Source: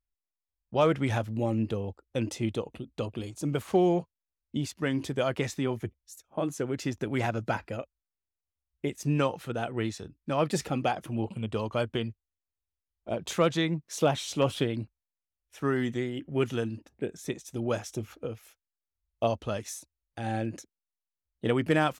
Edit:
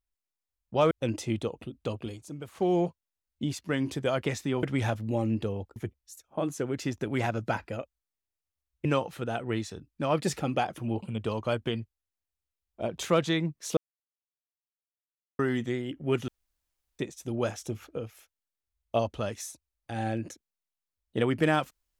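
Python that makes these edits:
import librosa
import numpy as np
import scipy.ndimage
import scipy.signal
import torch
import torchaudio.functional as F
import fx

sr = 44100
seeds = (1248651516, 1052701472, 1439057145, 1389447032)

y = fx.edit(x, sr, fx.move(start_s=0.91, length_s=1.13, to_s=5.76),
    fx.fade_down_up(start_s=3.14, length_s=0.8, db=-11.0, fade_s=0.34),
    fx.cut(start_s=8.85, length_s=0.28),
    fx.silence(start_s=14.05, length_s=1.62),
    fx.room_tone_fill(start_s=16.56, length_s=0.71), tone=tone)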